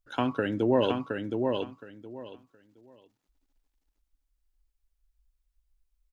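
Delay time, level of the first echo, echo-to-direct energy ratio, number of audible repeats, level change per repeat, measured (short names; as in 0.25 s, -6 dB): 0.718 s, -4.5 dB, -4.5 dB, 3, -14.0 dB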